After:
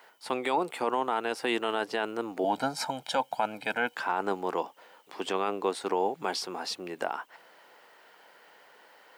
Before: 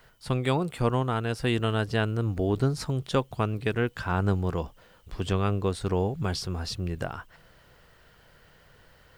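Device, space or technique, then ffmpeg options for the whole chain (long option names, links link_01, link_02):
laptop speaker: -filter_complex "[0:a]highpass=frequency=280:width=0.5412,highpass=frequency=280:width=1.3066,equalizer=frequency=860:width_type=o:width=0.55:gain=9,equalizer=frequency=2200:width_type=o:width=0.58:gain=4,alimiter=limit=-16.5dB:level=0:latency=1:release=13,asettb=1/sr,asplit=3[link_01][link_02][link_03];[link_01]atrim=end=2.444[link_04];[link_02]atrim=start=2.44:end=3.95,asetpts=PTS-STARTPTS,afade=type=in:duration=0.004:curve=qsin,afade=type=out:start_time=1.506:duration=0.004:curve=qsin,aecho=1:1:1.3:0.97,atrim=end_sample=66591[link_05];[link_03]atrim=start=3.946[link_06];[link_04][link_05]acrossfade=duration=0.004:curve1=hsin:curve2=qsin[link_07];[link_07][link_06]acrossfade=duration=0.004:curve1=qsin:curve2=hsin"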